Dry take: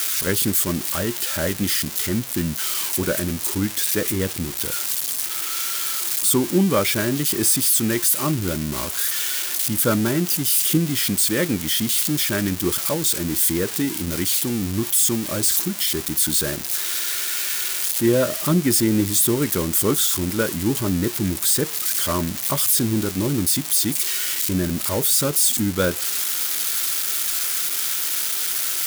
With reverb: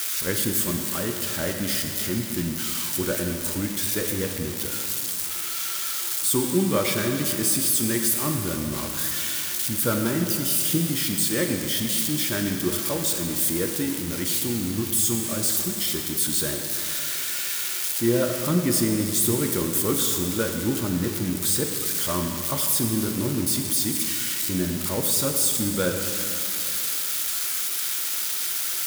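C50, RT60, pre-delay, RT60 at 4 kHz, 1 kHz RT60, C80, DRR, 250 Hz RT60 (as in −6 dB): 4.5 dB, 2.7 s, 4 ms, 2.5 s, 2.7 s, 5.5 dB, 3.0 dB, 2.7 s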